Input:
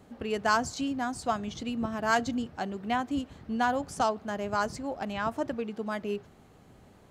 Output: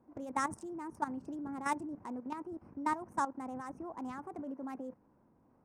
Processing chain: Wiener smoothing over 15 samples; level quantiser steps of 13 dB; varispeed +26%; ten-band EQ 250 Hz +7 dB, 1000 Hz +5 dB, 2000 Hz -4 dB, 4000 Hz -8 dB, 8000 Hz +6 dB; gain -7 dB

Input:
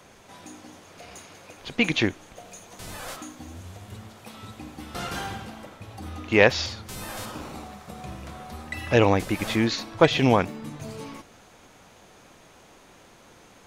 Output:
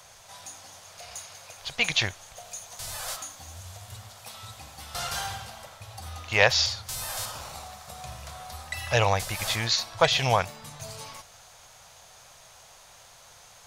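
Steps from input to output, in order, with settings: EQ curve 120 Hz 0 dB, 290 Hz -20 dB, 640 Hz +2 dB, 2400 Hz +1 dB, 4700 Hz +9 dB; gain -2 dB

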